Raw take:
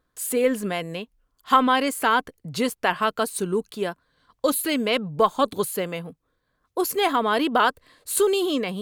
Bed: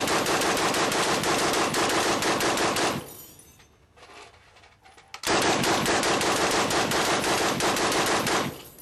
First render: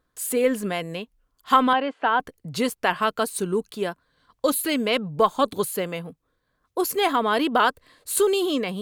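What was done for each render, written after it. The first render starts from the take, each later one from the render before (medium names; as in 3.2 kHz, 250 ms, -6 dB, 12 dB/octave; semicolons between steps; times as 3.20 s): 1.73–2.20 s: cabinet simulation 280–2900 Hz, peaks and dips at 390 Hz -8 dB, 770 Hz +4 dB, 1.2 kHz -4 dB, 2.2 kHz -9 dB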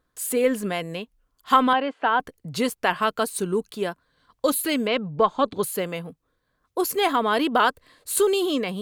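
4.87–5.63 s: distance through air 140 m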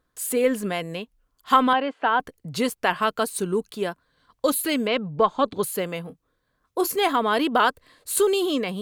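6.04–6.97 s: doubling 27 ms -12 dB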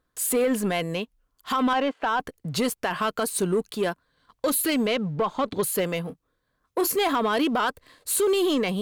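peak limiter -16.5 dBFS, peak gain reduction 11.5 dB; waveshaping leveller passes 1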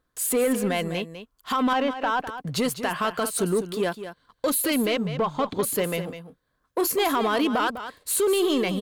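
delay 202 ms -11 dB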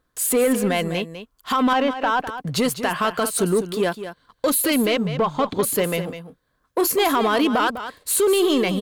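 trim +4 dB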